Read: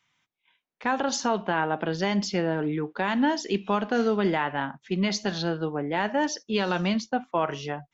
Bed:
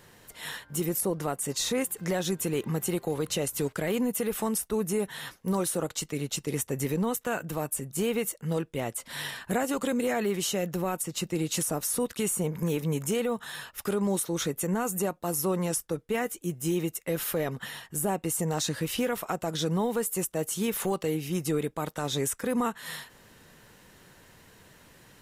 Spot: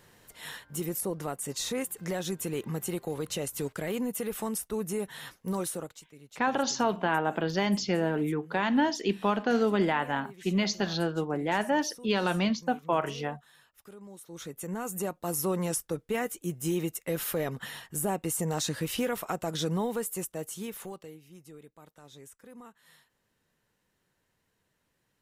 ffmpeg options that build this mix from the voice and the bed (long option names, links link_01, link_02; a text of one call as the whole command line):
ffmpeg -i stem1.wav -i stem2.wav -filter_complex "[0:a]adelay=5550,volume=-1.5dB[link_01];[1:a]volume=15dB,afade=type=out:start_time=5.67:duration=0.35:silence=0.149624,afade=type=in:start_time=14.18:duration=1.17:silence=0.112202,afade=type=out:start_time=19.63:duration=1.57:silence=0.1[link_02];[link_01][link_02]amix=inputs=2:normalize=0" out.wav